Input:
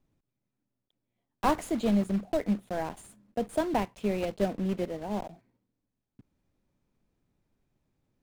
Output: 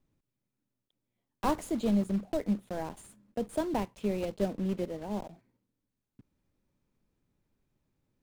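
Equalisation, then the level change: dynamic EQ 1900 Hz, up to -5 dB, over -44 dBFS, Q 0.8; bell 710 Hz -4.5 dB 0.23 oct; -1.5 dB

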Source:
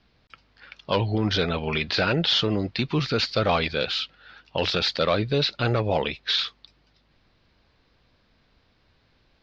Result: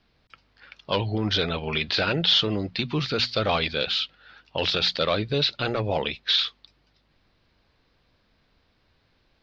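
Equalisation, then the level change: dynamic EQ 3400 Hz, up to +5 dB, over -37 dBFS, Q 1.8; notches 60/120/180/240 Hz; -2.0 dB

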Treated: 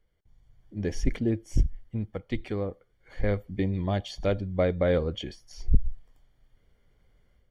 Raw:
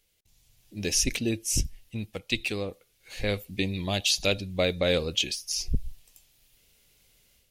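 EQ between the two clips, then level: polynomial smoothing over 41 samples; low shelf 83 Hz +7.5 dB; +1.0 dB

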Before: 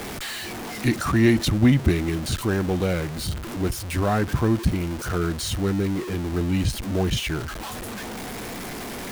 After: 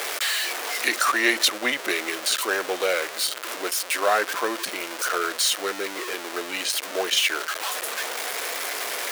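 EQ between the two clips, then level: HPF 530 Hz 24 dB/oct; bell 820 Hz -6.5 dB 0.68 oct; +8.0 dB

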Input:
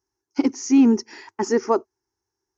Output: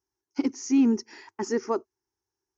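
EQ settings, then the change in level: dynamic EQ 750 Hz, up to -4 dB, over -33 dBFS, Q 1.2; -5.5 dB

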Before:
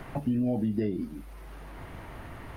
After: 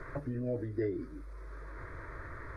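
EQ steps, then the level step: dynamic EQ 1700 Hz, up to +6 dB, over -56 dBFS, Q 1.5; air absorption 88 m; fixed phaser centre 780 Hz, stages 6; 0.0 dB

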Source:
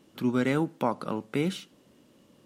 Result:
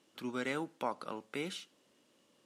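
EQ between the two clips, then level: LPF 10000 Hz 12 dB/oct; tone controls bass -6 dB, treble -2 dB; tilt +2 dB/oct; -7.0 dB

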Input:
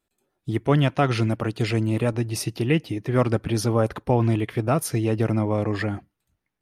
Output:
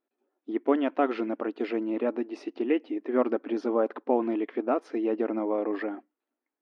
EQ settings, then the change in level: brick-wall FIR high-pass 230 Hz; tape spacing loss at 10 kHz 43 dB; 0.0 dB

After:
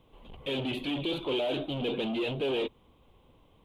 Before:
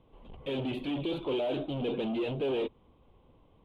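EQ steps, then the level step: high shelf 2200 Hz +10.5 dB; 0.0 dB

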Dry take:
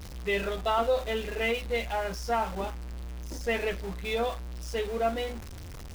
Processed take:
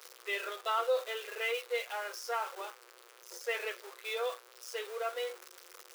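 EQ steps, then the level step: rippled Chebyshev high-pass 350 Hz, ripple 9 dB; tilt +2.5 dB/oct; bell 1700 Hz -3 dB; 0.0 dB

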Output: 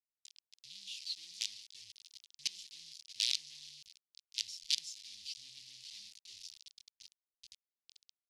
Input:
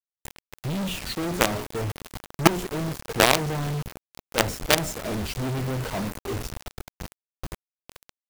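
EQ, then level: inverse Chebyshev high-pass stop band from 1500 Hz, stop band 60 dB; LPF 10000 Hz 24 dB/oct; air absorption 330 m; +13.0 dB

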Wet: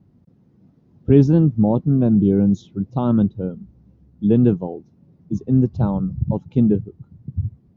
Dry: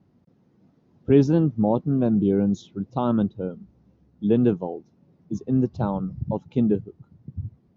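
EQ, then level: low shelf 250 Hz +12 dB; -1.5 dB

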